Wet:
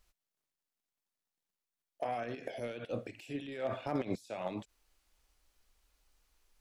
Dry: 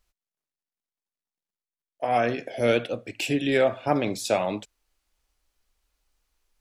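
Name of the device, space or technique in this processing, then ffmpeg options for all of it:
de-esser from a sidechain: -filter_complex "[0:a]asplit=2[link_01][link_02];[link_02]highpass=4800,apad=whole_len=291368[link_03];[link_01][link_03]sidechaincompress=threshold=-59dB:ratio=8:attack=0.58:release=53,volume=1.5dB"

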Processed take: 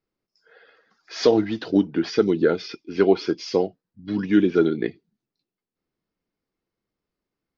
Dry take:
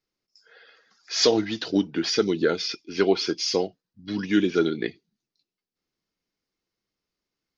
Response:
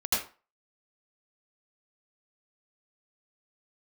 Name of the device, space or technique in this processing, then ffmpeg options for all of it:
through cloth: -af "lowpass=6500,highshelf=frequency=2300:gain=-14,volume=4dB"

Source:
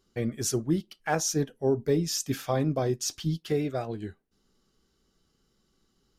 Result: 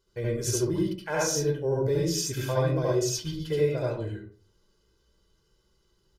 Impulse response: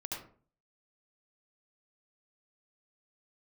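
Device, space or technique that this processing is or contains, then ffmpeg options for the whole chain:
microphone above a desk: -filter_complex "[0:a]aecho=1:1:2:0.71[link_01];[1:a]atrim=start_sample=2205[link_02];[link_01][link_02]afir=irnorm=-1:irlink=0"

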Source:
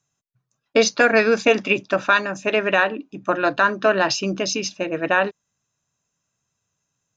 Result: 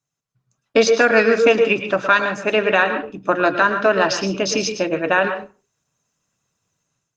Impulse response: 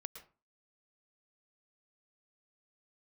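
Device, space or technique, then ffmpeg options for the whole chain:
far-field microphone of a smart speaker: -filter_complex "[1:a]atrim=start_sample=2205[link_01];[0:a][link_01]afir=irnorm=-1:irlink=0,highpass=84,dynaudnorm=framelen=240:gausssize=3:maxgain=11.5dB,volume=-1dB" -ar 48000 -c:a libopus -b:a 24k

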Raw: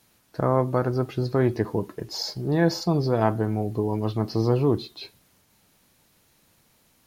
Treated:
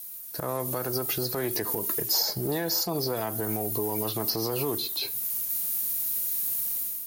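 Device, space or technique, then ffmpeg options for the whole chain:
FM broadcast chain: -filter_complex "[0:a]highpass=79,dynaudnorm=framelen=180:gausssize=5:maxgain=11.5dB,acrossover=split=340|940|2000[link_01][link_02][link_03][link_04];[link_01]acompressor=threshold=-31dB:ratio=4[link_05];[link_02]acompressor=threshold=-23dB:ratio=4[link_06];[link_03]acompressor=threshold=-34dB:ratio=4[link_07];[link_04]acompressor=threshold=-38dB:ratio=4[link_08];[link_05][link_06][link_07][link_08]amix=inputs=4:normalize=0,aemphasis=mode=production:type=50fm,alimiter=limit=-19.5dB:level=0:latency=1:release=128,asoftclip=type=hard:threshold=-21dB,lowpass=frequency=15000:width=0.5412,lowpass=frequency=15000:width=1.3066,aemphasis=mode=production:type=50fm,volume=-1dB"

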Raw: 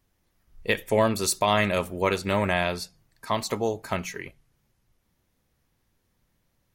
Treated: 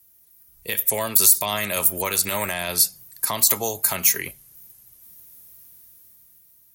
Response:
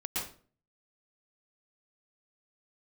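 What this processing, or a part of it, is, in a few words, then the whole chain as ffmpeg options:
FM broadcast chain: -filter_complex "[0:a]highpass=43,dynaudnorm=framelen=230:gausssize=11:maxgain=11dB,acrossover=split=220|560[link_01][link_02][link_03];[link_01]acompressor=threshold=-35dB:ratio=4[link_04];[link_02]acompressor=threshold=-34dB:ratio=4[link_05];[link_03]acompressor=threshold=-22dB:ratio=4[link_06];[link_04][link_05][link_06]amix=inputs=3:normalize=0,aemphasis=mode=production:type=50fm,alimiter=limit=-12dB:level=0:latency=1:release=30,asoftclip=type=hard:threshold=-13dB,lowpass=frequency=15000:width=0.5412,lowpass=frequency=15000:width=1.3066,aemphasis=mode=production:type=50fm,volume=-2dB"

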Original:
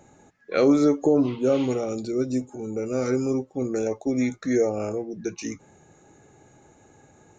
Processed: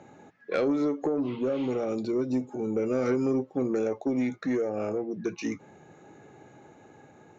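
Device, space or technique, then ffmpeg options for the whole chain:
AM radio: -af "highpass=130,lowpass=3700,acompressor=threshold=-24dB:ratio=6,asoftclip=type=tanh:threshold=-20.5dB,tremolo=f=0.32:d=0.26,volume=3.5dB"

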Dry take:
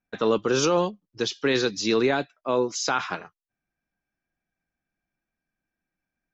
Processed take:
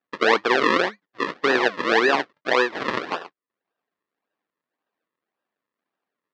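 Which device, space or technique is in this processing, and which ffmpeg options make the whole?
circuit-bent sampling toy: -af "acrusher=samples=40:mix=1:aa=0.000001:lfo=1:lforange=40:lforate=1.8,highpass=420,equalizer=frequency=600:width_type=q:width=4:gain=-3,equalizer=frequency=1100:width_type=q:width=4:gain=5,equalizer=frequency=1800:width_type=q:width=4:gain=7,lowpass=frequency=4600:width=0.5412,lowpass=frequency=4600:width=1.3066,volume=5.5dB"

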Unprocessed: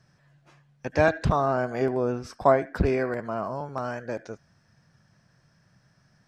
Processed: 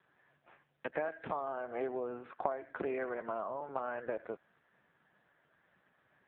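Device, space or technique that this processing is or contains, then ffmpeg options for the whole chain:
voicemail: -af "highpass=370,lowpass=2800,acompressor=threshold=-34dB:ratio=10,volume=2dB" -ar 8000 -c:a libopencore_amrnb -b:a 5900

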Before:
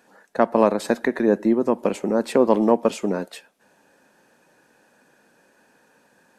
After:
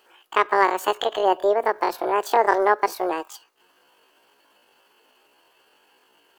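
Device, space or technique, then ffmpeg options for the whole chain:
chipmunk voice: -af "asetrate=78577,aresample=44100,atempo=0.561231,volume=-1dB"

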